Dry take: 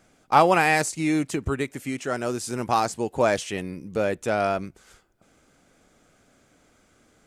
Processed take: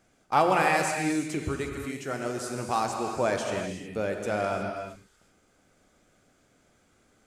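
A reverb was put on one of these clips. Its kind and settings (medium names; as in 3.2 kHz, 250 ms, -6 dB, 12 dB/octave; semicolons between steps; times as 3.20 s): gated-style reverb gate 390 ms flat, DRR 2.5 dB; trim -6 dB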